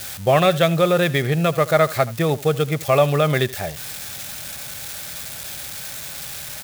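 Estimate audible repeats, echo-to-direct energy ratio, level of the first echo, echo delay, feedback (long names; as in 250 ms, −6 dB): 1, −19.0 dB, −19.0 dB, 78 ms, repeats not evenly spaced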